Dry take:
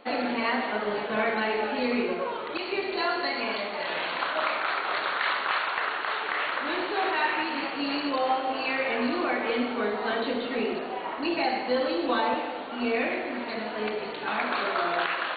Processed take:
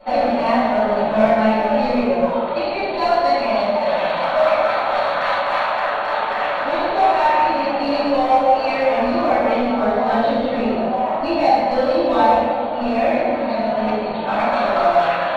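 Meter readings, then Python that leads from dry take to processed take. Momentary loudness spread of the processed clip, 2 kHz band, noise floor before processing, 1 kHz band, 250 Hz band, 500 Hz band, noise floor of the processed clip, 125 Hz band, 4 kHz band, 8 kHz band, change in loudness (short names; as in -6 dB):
5 LU, +3.5 dB, -35 dBFS, +12.0 dB, +9.5 dB, +12.5 dB, -23 dBFS, +14.5 dB, +2.5 dB, n/a, +10.0 dB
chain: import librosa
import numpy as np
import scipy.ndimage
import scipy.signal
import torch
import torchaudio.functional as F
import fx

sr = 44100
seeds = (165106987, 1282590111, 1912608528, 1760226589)

p1 = fx.curve_eq(x, sr, hz=(250.0, 370.0, 620.0, 1300.0, 2000.0, 3000.0, 4800.0), db=(0, -11, 4, -7, -9, -10, -6))
p2 = np.clip(p1, -10.0 ** (-28.5 / 20.0), 10.0 ** (-28.5 / 20.0))
p3 = p1 + (p2 * librosa.db_to_amplitude(-4.0))
p4 = fx.room_shoebox(p3, sr, seeds[0], volume_m3=190.0, walls='mixed', distance_m=5.4)
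y = p4 * librosa.db_to_amplitude(-6.5)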